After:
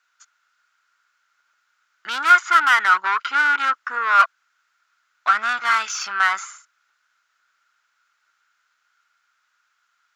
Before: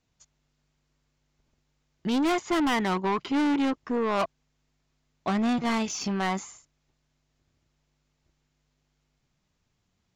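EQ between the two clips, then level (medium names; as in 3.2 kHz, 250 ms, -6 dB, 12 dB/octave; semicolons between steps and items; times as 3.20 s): resonant high-pass 1.4 kHz, resonance Q 11; +5.5 dB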